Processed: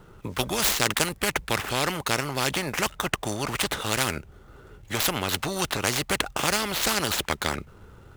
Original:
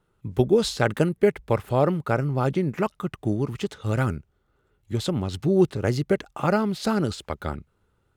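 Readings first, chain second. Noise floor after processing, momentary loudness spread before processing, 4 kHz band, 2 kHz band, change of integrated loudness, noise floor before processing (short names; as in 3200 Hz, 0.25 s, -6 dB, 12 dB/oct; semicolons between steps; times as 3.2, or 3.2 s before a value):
-51 dBFS, 10 LU, +10.0 dB, +6.5 dB, -1.0 dB, -69 dBFS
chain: median filter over 9 samples; tone controls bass +1 dB, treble +4 dB; spectral compressor 4:1; gain +4.5 dB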